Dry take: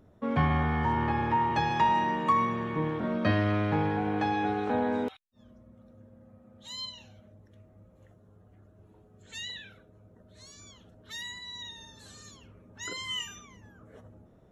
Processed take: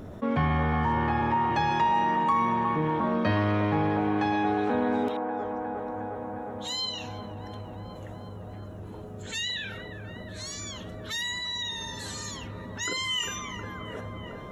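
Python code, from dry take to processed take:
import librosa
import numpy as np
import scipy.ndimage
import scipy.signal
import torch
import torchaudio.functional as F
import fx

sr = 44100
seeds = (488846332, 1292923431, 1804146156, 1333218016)

y = fx.hum_notches(x, sr, base_hz=60, count=2)
y = fx.echo_wet_bandpass(y, sr, ms=358, feedback_pct=66, hz=700.0, wet_db=-8)
y = fx.env_flatten(y, sr, amount_pct=50)
y = F.gain(torch.from_numpy(y), -2.0).numpy()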